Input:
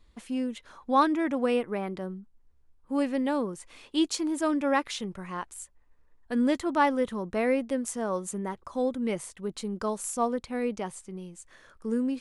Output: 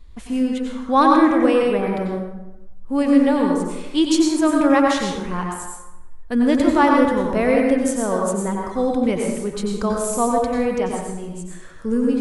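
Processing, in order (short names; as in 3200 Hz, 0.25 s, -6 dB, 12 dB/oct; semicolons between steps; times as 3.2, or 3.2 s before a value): low shelf 100 Hz +12 dB; plate-style reverb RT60 0.99 s, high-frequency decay 0.6×, pre-delay 80 ms, DRR -0.5 dB; gain +6 dB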